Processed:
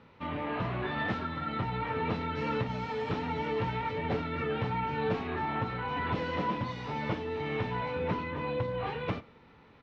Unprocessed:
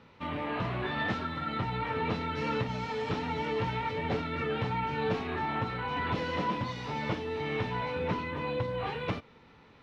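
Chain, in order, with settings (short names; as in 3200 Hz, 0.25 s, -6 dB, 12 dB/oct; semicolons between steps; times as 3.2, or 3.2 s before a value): high shelf 5500 Hz -11.5 dB; on a send: echo 0.108 s -23.5 dB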